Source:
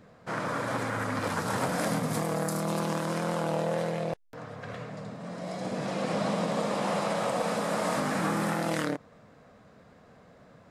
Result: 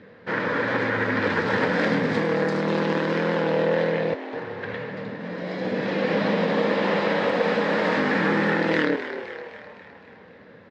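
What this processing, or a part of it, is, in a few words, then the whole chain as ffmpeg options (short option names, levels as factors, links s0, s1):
frequency-shifting delay pedal into a guitar cabinet: -filter_complex "[0:a]asplit=7[s0][s1][s2][s3][s4][s5][s6];[s1]adelay=257,afreqshift=100,volume=0.282[s7];[s2]adelay=514,afreqshift=200,volume=0.155[s8];[s3]adelay=771,afreqshift=300,volume=0.0851[s9];[s4]adelay=1028,afreqshift=400,volume=0.0468[s10];[s5]adelay=1285,afreqshift=500,volume=0.0257[s11];[s6]adelay=1542,afreqshift=600,volume=0.0141[s12];[s0][s7][s8][s9][s10][s11][s12]amix=inputs=7:normalize=0,highpass=98,equalizer=f=140:t=q:w=4:g=-10,equalizer=f=470:t=q:w=4:g=5,equalizer=f=690:t=q:w=4:g=-10,equalizer=f=1200:t=q:w=4:g=-7,equalizer=f=1800:t=q:w=4:g=7,lowpass=f=4100:w=0.5412,lowpass=f=4100:w=1.3066,volume=2.37"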